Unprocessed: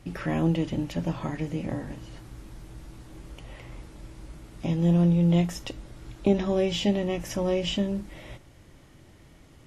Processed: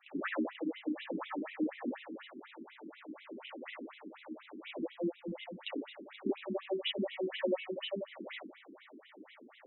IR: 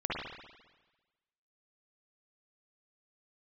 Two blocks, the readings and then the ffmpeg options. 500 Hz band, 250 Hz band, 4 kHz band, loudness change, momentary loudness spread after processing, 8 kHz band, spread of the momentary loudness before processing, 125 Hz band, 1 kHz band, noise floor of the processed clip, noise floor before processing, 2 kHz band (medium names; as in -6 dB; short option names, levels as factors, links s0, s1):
-8.5 dB, -12.0 dB, -7.0 dB, -13.0 dB, 16 LU, under -35 dB, 24 LU, -27.5 dB, -7.5 dB, -60 dBFS, -53 dBFS, -3.0 dB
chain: -filter_complex "[0:a]acompressor=threshold=0.0251:ratio=12[s0];[1:a]atrim=start_sample=2205,asetrate=74970,aresample=44100[s1];[s0][s1]afir=irnorm=-1:irlink=0,afftfilt=real='re*between(b*sr/1024,280*pow(2900/280,0.5+0.5*sin(2*PI*4.1*pts/sr))/1.41,280*pow(2900/280,0.5+0.5*sin(2*PI*4.1*pts/sr))*1.41)':imag='im*between(b*sr/1024,280*pow(2900/280,0.5+0.5*sin(2*PI*4.1*pts/sr))/1.41,280*pow(2900/280,0.5+0.5*sin(2*PI*4.1*pts/sr))*1.41)':win_size=1024:overlap=0.75,volume=2"